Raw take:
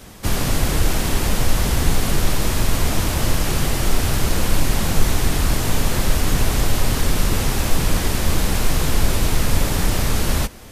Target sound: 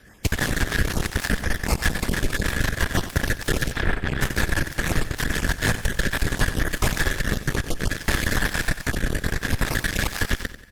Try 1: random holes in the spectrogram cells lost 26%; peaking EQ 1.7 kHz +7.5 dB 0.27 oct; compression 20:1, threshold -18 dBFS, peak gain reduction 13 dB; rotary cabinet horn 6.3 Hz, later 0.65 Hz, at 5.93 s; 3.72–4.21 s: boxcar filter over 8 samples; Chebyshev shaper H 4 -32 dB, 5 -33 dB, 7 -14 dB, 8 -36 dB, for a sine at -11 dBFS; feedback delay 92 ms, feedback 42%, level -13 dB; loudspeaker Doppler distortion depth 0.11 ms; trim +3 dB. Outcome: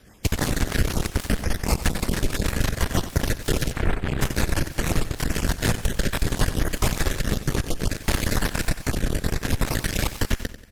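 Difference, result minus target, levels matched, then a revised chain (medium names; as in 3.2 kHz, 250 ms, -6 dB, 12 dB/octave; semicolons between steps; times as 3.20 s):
2 kHz band -5.5 dB
random holes in the spectrogram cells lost 26%; peaking EQ 1.7 kHz +19 dB 0.27 oct; compression 20:1, threshold -18 dBFS, peak gain reduction 13 dB; rotary cabinet horn 6.3 Hz, later 0.65 Hz, at 5.93 s; 3.72–4.21 s: boxcar filter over 8 samples; Chebyshev shaper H 4 -32 dB, 5 -33 dB, 7 -14 dB, 8 -36 dB, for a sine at -11 dBFS; feedback delay 92 ms, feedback 42%, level -13 dB; loudspeaker Doppler distortion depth 0.11 ms; trim +3 dB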